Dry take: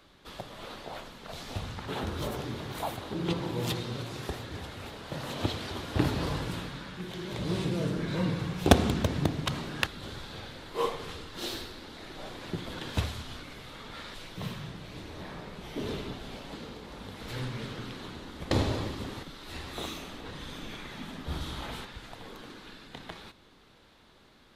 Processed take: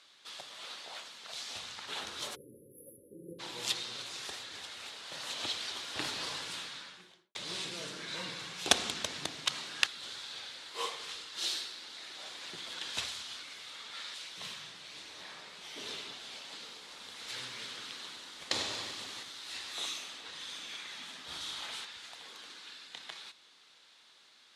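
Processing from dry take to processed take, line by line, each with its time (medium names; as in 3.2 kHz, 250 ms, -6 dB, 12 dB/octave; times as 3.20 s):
2.35–3.40 s: spectral selection erased 570–10000 Hz
6.73–7.35 s: studio fade out
16.49–19.78 s: bit-crushed delay 96 ms, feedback 80%, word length 8-bit, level -13 dB
whole clip: frequency weighting ITU-R 468; trim -6.5 dB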